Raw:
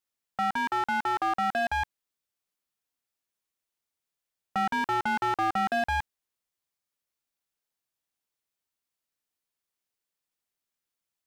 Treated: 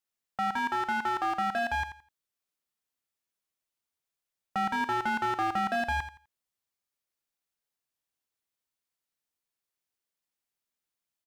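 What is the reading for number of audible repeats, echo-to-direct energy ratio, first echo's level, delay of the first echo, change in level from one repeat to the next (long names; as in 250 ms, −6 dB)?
2, −11.5 dB, −11.5 dB, 84 ms, −13.0 dB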